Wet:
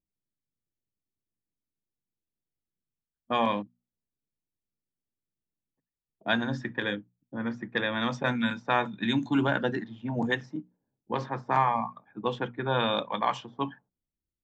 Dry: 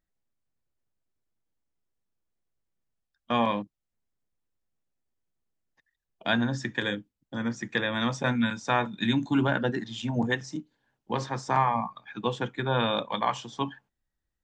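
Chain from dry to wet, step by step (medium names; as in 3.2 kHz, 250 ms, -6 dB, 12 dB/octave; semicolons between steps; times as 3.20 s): level-controlled noise filter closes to 320 Hz, open at -21 dBFS; bass shelf 66 Hz -11.5 dB; hum notches 60/120/180/240 Hz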